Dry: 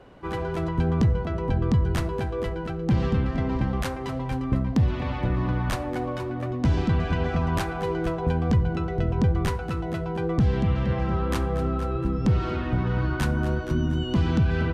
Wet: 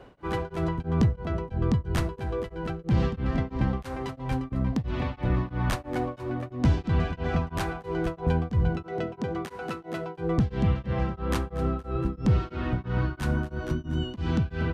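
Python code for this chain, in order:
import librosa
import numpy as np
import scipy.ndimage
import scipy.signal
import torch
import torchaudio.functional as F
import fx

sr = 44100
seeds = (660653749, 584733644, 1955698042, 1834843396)

y = fx.highpass(x, sr, hz=250.0, slope=12, at=(8.83, 10.18))
y = fx.rider(y, sr, range_db=3, speed_s=2.0)
y = y * np.abs(np.cos(np.pi * 3.0 * np.arange(len(y)) / sr))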